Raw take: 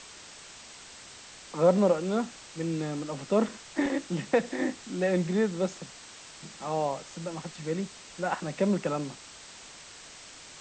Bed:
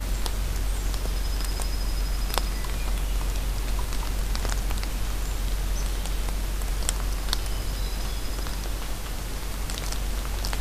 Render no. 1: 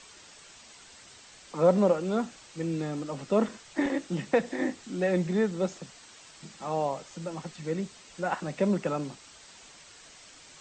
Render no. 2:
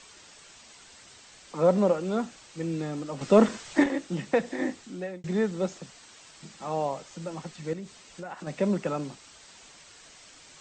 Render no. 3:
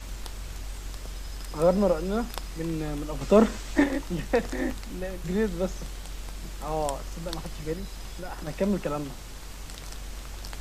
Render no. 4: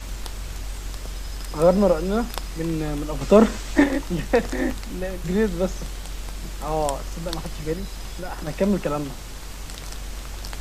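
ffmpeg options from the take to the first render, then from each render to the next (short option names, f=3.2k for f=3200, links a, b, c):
-af "afftdn=nr=6:nf=-48"
-filter_complex "[0:a]asettb=1/sr,asplit=3[a][b][c];[a]atrim=end=3.214[d];[b]atrim=start=3.21:end=3.84,asetpts=PTS-STARTPTS,afade=t=in:d=0.004:c=qsin,afade=t=out:st=0.626:d=0.004:c=qsin,acontrast=84[e];[c]atrim=start=3.836[f];[d][e]acrossfade=d=0.004:c1=hsin:c2=qsin[g];[g][f]acrossfade=d=0.004:c1=qsin:c2=hsin,asettb=1/sr,asplit=3[h][i][j];[h]atrim=end=7.734[k];[i]atrim=start=7.73:end=8.47,asetpts=PTS-STARTPTS,afade=t=in:d=0.004:c=qsin,afade=t=out:st=0.736:d=0.004:c=qsin,acompressor=threshold=-36dB:ratio=4:attack=3.2:release=140:knee=1:detection=peak[l];[j]atrim=start=8.466[m];[k][l]acrossfade=d=0.004:c1=hsin:c2=qsin[n];[n][m]acrossfade=d=0.004:c1=qsin:c2=hsin,asplit=2[o][p];[o]atrim=end=5.24,asetpts=PTS-STARTPTS,afade=t=out:st=4.77:d=0.47[q];[p]atrim=start=5.24,asetpts=PTS-STARTPTS,afade=t=in:d=0.004:c=hsin[r];[q][r]concat=n=2:v=0:a=1"
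-filter_complex "[1:a]volume=-10dB[a];[0:a][a]amix=inputs=2:normalize=0"
-af "volume=5dB,alimiter=limit=-3dB:level=0:latency=1"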